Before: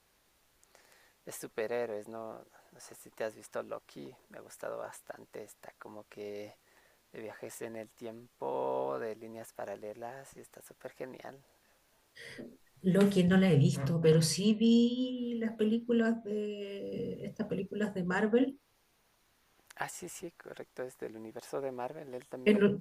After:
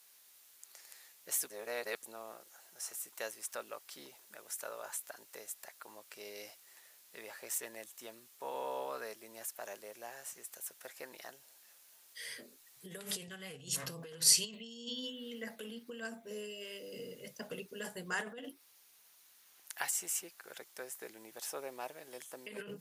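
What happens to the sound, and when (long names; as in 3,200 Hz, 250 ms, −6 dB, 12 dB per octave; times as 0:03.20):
0:01.50–0:02.03: reverse
whole clip: compressor whose output falls as the input rises −32 dBFS, ratio −1; spectral tilt +4.5 dB per octave; level −5.5 dB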